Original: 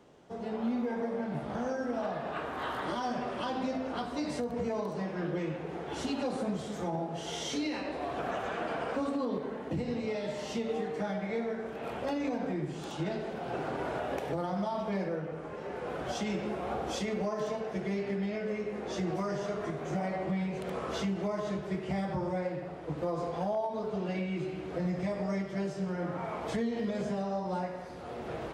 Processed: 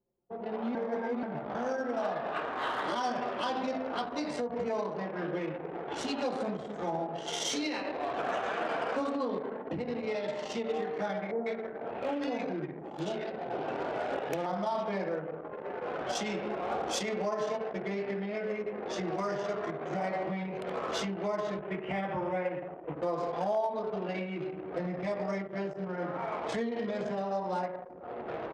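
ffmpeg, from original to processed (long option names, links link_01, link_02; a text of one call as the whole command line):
ffmpeg -i in.wav -filter_complex "[0:a]asettb=1/sr,asplit=3[link_01][link_02][link_03];[link_01]atrim=end=11.314[link_04];[link_02]atrim=start=11.31:end=14.46,asetpts=PTS-STARTPTS,afade=type=in:duration=0.004:curve=qsin,afade=type=out:start_time=3.146:duration=0.004:curve=qsin,acrossover=split=1200[link_05][link_06];[link_06]adelay=150[link_07];[link_05][link_07]amix=inputs=2:normalize=0,atrim=end_sample=138915[link_08];[link_03]atrim=start=14.456[link_09];[link_04][link_08]acrossfade=duration=0.004:curve1=hsin:curve2=qsin[link_10];[link_10][link_09]acrossfade=duration=0.004:curve1=qsin:curve2=hsin,asettb=1/sr,asplit=3[link_11][link_12][link_13];[link_11]atrim=end=21.614[link_14];[link_12]atrim=start=21.61:end=22.96,asetpts=PTS-STARTPTS,afade=type=in:duration=0.004:curve=qsin,afade=type=out:start_time=1.346:duration=0.004:curve=qsin,highshelf=frequency=3500:width_type=q:width=3:gain=-6.5[link_15];[link_13]atrim=start=22.956[link_16];[link_14][link_15]acrossfade=duration=0.004:curve1=hsin:curve2=qsin[link_17];[link_17][link_16]acrossfade=duration=0.004:curve1=qsin:curve2=hsin,asplit=3[link_18][link_19][link_20];[link_18]atrim=end=0.752[link_21];[link_19]atrim=start=0.748:end=1.232,asetpts=PTS-STARTPTS,areverse[link_22];[link_20]atrim=start=1.228[link_23];[link_21][link_22]acrossfade=duration=0.004:curve1=hsin:curve2=hsin[link_24];[link_24][link_23]acrossfade=duration=0.004:curve1=hsin:curve2=hsin,highshelf=frequency=2100:gain=-7,anlmdn=0.251,aemphasis=mode=production:type=riaa,volume=4.5dB" out.wav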